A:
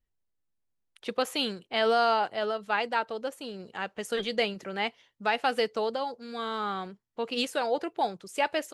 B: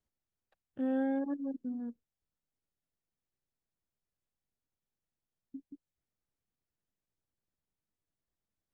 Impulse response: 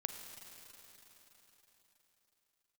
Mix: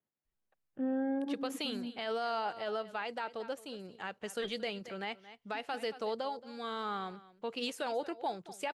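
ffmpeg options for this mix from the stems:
-filter_complex "[0:a]adelay=250,volume=-5.5dB,asplit=2[a][b];[b]volume=-18.5dB[c];[1:a]highpass=f=120:w=0.5412,highpass=f=120:w=1.3066,acontrast=29,lowpass=2.3k,volume=-6dB,asplit=2[d][e];[e]volume=-21dB[f];[c][f]amix=inputs=2:normalize=0,aecho=0:1:225:1[g];[a][d][g]amix=inputs=3:normalize=0,alimiter=level_in=2dB:limit=-24dB:level=0:latency=1:release=92,volume=-2dB"

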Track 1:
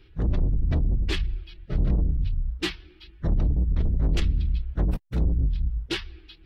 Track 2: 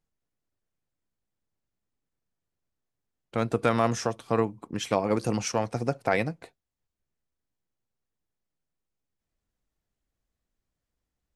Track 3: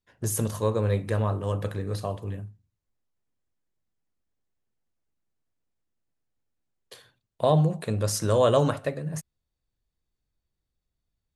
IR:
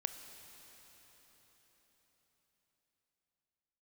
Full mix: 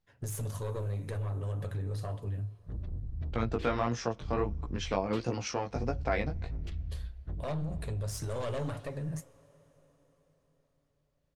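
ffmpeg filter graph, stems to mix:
-filter_complex "[0:a]adelay=2500,volume=-20dB,asplit=2[a][b];[b]volume=-14.5dB[c];[1:a]lowpass=f=5.9k:w=0.5412,lowpass=f=5.9k:w=1.3066,acompressor=threshold=-39dB:ratio=1.5,flanger=delay=16.5:depth=4.5:speed=1.5,volume=3dB,asplit=2[d][e];[e]volume=-23.5dB[f];[2:a]aecho=1:1:7.1:0.33,aeval=exprs='0.447*(cos(1*acos(clip(val(0)/0.447,-1,1)))-cos(1*PI/2))+0.1*(cos(5*acos(clip(val(0)/0.447,-1,1)))-cos(5*PI/2))+0.0631*(cos(8*acos(clip(val(0)/0.447,-1,1)))-cos(8*PI/2))':c=same,flanger=delay=3.8:depth=9.9:regen=-58:speed=1.8:shape=triangular,volume=-9dB,asplit=2[g][h];[h]volume=-16.5dB[i];[a][g]amix=inputs=2:normalize=0,equalizer=f=87:t=o:w=1.1:g=11,alimiter=level_in=6dB:limit=-24dB:level=0:latency=1:release=90,volume=-6dB,volume=0dB[j];[3:a]atrim=start_sample=2205[k];[c][f][i]amix=inputs=3:normalize=0[l];[l][k]afir=irnorm=-1:irlink=0[m];[d][j][m]amix=inputs=3:normalize=0"

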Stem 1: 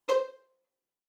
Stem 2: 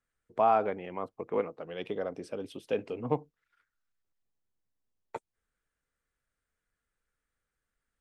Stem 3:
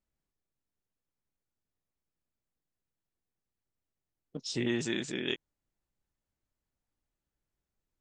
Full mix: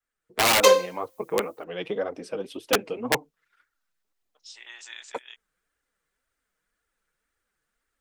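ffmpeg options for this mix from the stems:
-filter_complex "[0:a]crystalizer=i=5:c=0,adelay=550,volume=2.5dB[a];[1:a]adynamicequalizer=threshold=0.00794:dfrequency=330:dqfactor=1.1:tfrequency=330:tqfactor=1.1:attack=5:release=100:ratio=0.375:range=2:mode=cutabove:tftype=bell,flanger=delay=2.1:depth=4.5:regen=0:speed=1.9:shape=triangular,aeval=exprs='(mod(14.1*val(0)+1,2)-1)/14.1':c=same,volume=2dB,asplit=2[b][c];[2:a]highpass=f=820:w=0.5412,highpass=f=820:w=1.3066,volume=-11dB[d];[c]apad=whole_len=353214[e];[d][e]sidechaincompress=threshold=-44dB:ratio=5:attack=24:release=1450[f];[a][b][f]amix=inputs=3:normalize=0,lowshelf=f=160:g=-8.5,dynaudnorm=f=200:g=3:m=8dB"

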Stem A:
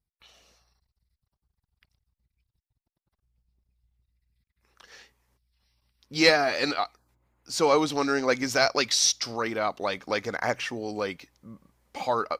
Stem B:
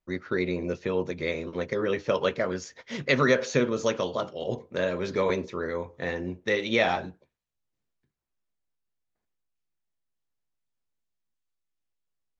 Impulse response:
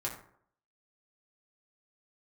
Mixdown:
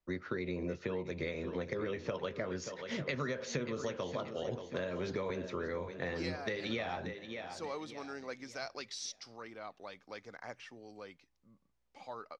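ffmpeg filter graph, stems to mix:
-filter_complex "[0:a]volume=-19dB[a];[1:a]acompressor=threshold=-29dB:ratio=2,volume=-2dB,asplit=2[b][c];[c]volume=-13dB,aecho=0:1:581|1162|1743|2324|2905:1|0.37|0.137|0.0507|0.0187[d];[a][b][d]amix=inputs=3:normalize=0,acrossover=split=130[e][f];[f]acompressor=threshold=-34dB:ratio=6[g];[e][g]amix=inputs=2:normalize=0,lowpass=7.5k"

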